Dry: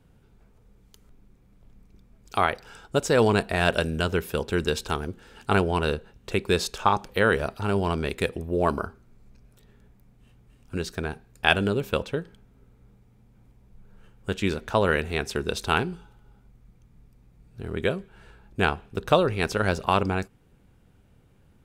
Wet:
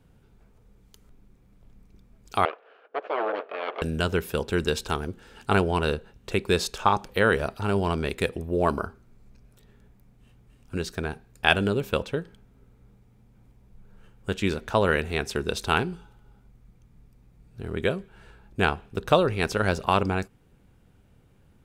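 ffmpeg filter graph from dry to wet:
-filter_complex "[0:a]asettb=1/sr,asplit=3[a][b][c];[a]atrim=end=2.454[d];[b]atrim=start=2.45:end=3.82,asetpts=PTS-STARTPTS,afade=t=in:d=0.004:c=qsin,afade=t=out:st=1.366:d=0.004:c=qsin,aeval=exprs='abs(val(0))':c=same,highpass=f=430:w=0.5412,highpass=f=430:w=1.3066,equalizer=f=450:t=q:w=4:g=8,equalizer=f=640:t=q:w=4:g=4,equalizer=f=940:t=q:w=4:g=-8,equalizer=f=2k:t=q:w=4:g=-10,lowpass=f=2.3k:w=0.5412,lowpass=f=2.3k:w=1.3066[e];[c]atrim=start=3.816[f];[d][e]acrossfade=d=0.004:c1=hsin:c2=qsin[g];[g][f]acrossfade=d=0.004:c1=qsin:c2=hsin"

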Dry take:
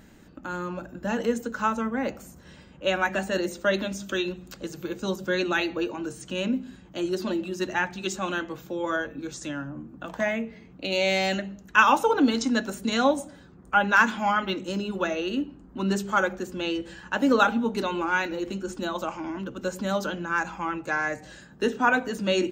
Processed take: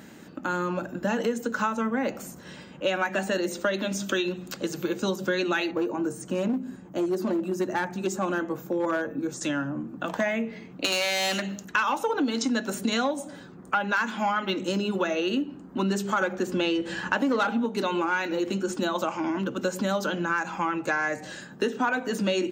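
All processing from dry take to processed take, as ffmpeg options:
-filter_complex "[0:a]asettb=1/sr,asplit=3[a][b][c];[a]atrim=end=5.714[d];[b]atrim=start=5.71:end=9.41,asetpts=PTS-STARTPTS,afade=t=in:d=0.004:c=qsin,afade=t=out:st=3.696:d=0.004:c=qsin,equalizer=f=3.4k:w=0.74:g=-14,aeval=exprs='clip(val(0),-1,0.0562)':c=same[e];[c]atrim=start=9.406[f];[d][e]acrossfade=d=0.004:c1=hsin:c2=qsin[g];[g][f]acrossfade=d=0.004:c1=qsin:c2=hsin,asettb=1/sr,asplit=3[h][i][j];[h]atrim=end=10.844[k];[i]atrim=start=10.84:end=11.65,asetpts=PTS-STARTPTS,afade=t=in:d=0.004:c=qsin,afade=t=out:st=0.806:d=0.004:c=qsin,highshelf=f=2.1k:g=11.5,aeval=exprs='clip(val(0),-1,0.0398)':c=same[l];[j]atrim=start=11.646[m];[k][l]acrossfade=d=0.004:c1=hsin:c2=qsin[n];[n][m]acrossfade=d=0.004:c1=qsin:c2=hsin,asettb=1/sr,asplit=3[o][p][q];[o]atrim=end=16.214[r];[p]atrim=start=16.21:end=17.66,asetpts=PTS-STARTPTS,afade=t=in:d=0.004:c=qsin,afade=t=out:st=1.446:d=0.004:c=qsin,acontrast=49,highshelf=f=6.4k:g=-5.5[s];[q]atrim=start=17.656[t];[r][s]acrossfade=d=0.004:c1=hsin:c2=qsin[u];[u][t]acrossfade=d=0.004:c1=qsin:c2=hsin,acontrast=73,highpass=150,acompressor=threshold=-23dB:ratio=6"

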